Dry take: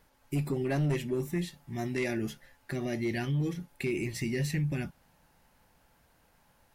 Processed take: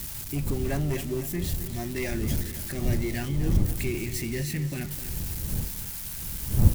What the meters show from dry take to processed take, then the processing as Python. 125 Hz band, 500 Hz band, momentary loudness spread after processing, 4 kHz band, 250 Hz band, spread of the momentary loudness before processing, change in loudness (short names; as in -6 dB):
+5.5 dB, +0.5 dB, 6 LU, +6.0 dB, +2.0 dB, 8 LU, +3.0 dB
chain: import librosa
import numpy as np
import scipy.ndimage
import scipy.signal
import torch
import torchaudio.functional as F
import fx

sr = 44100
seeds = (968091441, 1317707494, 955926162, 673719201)

y = x + 0.5 * 10.0 ** (-28.5 / 20.0) * np.diff(np.sign(x), prepend=np.sign(x[:1]))
y = fx.dmg_wind(y, sr, seeds[0], corner_hz=96.0, level_db=-29.0)
y = fx.echo_feedback(y, sr, ms=256, feedback_pct=51, wet_db=-12)